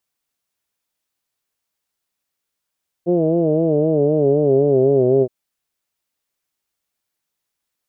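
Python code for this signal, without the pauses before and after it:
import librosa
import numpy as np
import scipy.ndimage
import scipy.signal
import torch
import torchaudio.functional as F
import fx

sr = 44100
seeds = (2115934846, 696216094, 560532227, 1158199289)

y = fx.formant_vowel(sr, seeds[0], length_s=2.22, hz=170.0, glide_st=-5.0, vibrato_hz=3.9, vibrato_st=0.9, f1_hz=400.0, f2_hz=630.0, f3_hz=2900.0)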